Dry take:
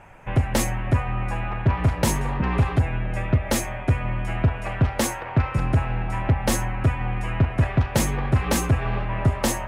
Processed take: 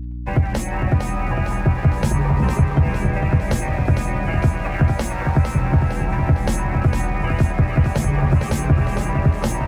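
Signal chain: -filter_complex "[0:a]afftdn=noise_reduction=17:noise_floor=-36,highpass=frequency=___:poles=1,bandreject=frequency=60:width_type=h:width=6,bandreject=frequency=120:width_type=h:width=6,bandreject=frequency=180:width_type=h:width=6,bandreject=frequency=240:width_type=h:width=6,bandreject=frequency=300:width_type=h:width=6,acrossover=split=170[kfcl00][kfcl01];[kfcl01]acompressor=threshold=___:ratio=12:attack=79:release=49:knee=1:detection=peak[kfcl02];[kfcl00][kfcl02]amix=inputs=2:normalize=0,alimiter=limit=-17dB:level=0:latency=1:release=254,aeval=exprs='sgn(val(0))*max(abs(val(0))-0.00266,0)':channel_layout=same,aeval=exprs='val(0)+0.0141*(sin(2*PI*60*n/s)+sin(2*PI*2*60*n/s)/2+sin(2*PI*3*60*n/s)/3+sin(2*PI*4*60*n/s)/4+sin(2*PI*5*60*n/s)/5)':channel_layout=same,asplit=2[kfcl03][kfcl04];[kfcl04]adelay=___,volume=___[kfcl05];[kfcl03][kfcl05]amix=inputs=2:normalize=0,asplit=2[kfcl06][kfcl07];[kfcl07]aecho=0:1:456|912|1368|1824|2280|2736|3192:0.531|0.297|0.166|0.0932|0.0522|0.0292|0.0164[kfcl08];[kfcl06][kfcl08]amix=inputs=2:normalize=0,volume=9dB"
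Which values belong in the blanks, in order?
50, -40dB, 14, -9.5dB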